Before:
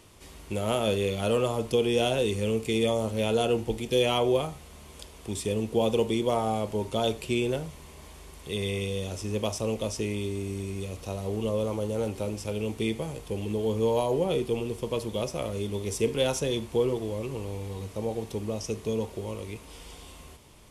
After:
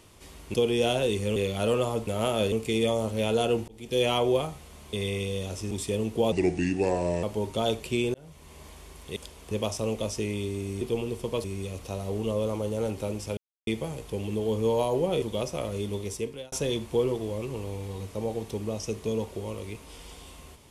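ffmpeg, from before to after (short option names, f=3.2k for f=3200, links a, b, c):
-filter_complex "[0:a]asplit=19[a][b][c][d][e][f][g][h][i][j][k][l][m][n][o][p][q][r][s];[a]atrim=end=0.542[t];[b]atrim=start=1.698:end=2.522[u];[c]atrim=start=0.988:end=1.702[v];[d]atrim=start=0.538:end=0.992[w];[e]atrim=start=2.518:end=3.68,asetpts=PTS-STARTPTS,afade=t=out:st=1.158:d=0.004:c=hsin[x];[f]atrim=start=3.68:end=4.932,asetpts=PTS-STARTPTS,afade=t=in:d=0.36[y];[g]atrim=start=8.538:end=9.322[z];[h]atrim=start=5.278:end=5.894[aa];[i]atrim=start=5.89:end=6.61,asetpts=PTS-STARTPTS,asetrate=34839,aresample=44100,atrim=end_sample=40192,asetpts=PTS-STARTPTS[ab];[j]atrim=start=6.606:end=7.52,asetpts=PTS-STARTPTS,afade=t=out:st=0.91:d=0.004:c=hsin[ac];[k]atrim=start=7.52:end=8.542,asetpts=PTS-STARTPTS,afade=t=in:d=0.44[ad];[l]atrim=start=4.928:end=5.282[ae];[m]atrim=start=9.318:end=10.622[af];[n]atrim=start=14.398:end=15.032[ag];[o]atrim=start=10.618:end=12.55,asetpts=PTS-STARTPTS,afade=t=out:st=1.928:d=0.004:c=hsin[ah];[p]atrim=start=12.55:end=12.85,asetpts=PTS-STARTPTS,volume=0[ai];[q]atrim=start=12.85:end=14.402,asetpts=PTS-STARTPTS,afade=t=in:d=0.004:c=hsin[aj];[r]atrim=start=15.028:end=16.33,asetpts=PTS-STARTPTS,afade=t=out:st=0.712:d=0.59[ak];[s]atrim=start=16.33,asetpts=PTS-STARTPTS,afade=t=in:d=0.004:c=hsin[al];[t][u]acrossfade=d=0.004:c1=hsin:c2=hsin[am];[am][v]acrossfade=d=0.004:c1=hsin:c2=hsin[an];[an][w]acrossfade=d=0.004:c1=hsin:c2=hsin[ao];[x][y]concat=n=2:v=0:a=1[ap];[ao][ap]acrossfade=d=0.004:c1=hsin:c2=hsin[aq];[aq][z]acrossfade=d=0.004:c1=hsin:c2=hsin[ar];[ar][aa]acrossfade=d=0.004:c1=hsin:c2=hsin[as];[as][ab]acrossfade=d=0.004:c1=hsin:c2=hsin[at];[ac][ad]concat=n=2:v=0:a=1[au];[at][au]acrossfade=d=0.004:c1=hsin:c2=hsin[av];[av][ae]acrossfade=d=0.004:c1=hsin:c2=hsin[aw];[aw][af]acrossfade=d=0.004:c1=hsin:c2=hsin[ax];[ax][ag]acrossfade=d=0.004:c1=hsin:c2=hsin[ay];[ah][ai][aj]concat=n=3:v=0:a=1[az];[ay][az]acrossfade=d=0.004:c1=hsin:c2=hsin[ba];[ak][al]concat=n=2:v=0:a=1[bb];[ba][bb]acrossfade=d=0.004:c1=hsin:c2=hsin"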